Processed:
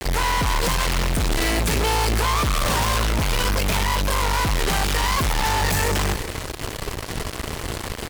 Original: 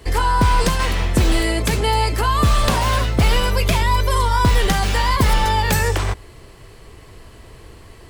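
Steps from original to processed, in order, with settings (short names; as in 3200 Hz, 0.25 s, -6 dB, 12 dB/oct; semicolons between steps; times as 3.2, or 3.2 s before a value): fuzz box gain 47 dB, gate -39 dBFS; on a send: echo 0.361 s -14.5 dB; on the sum: gain -6.5 dB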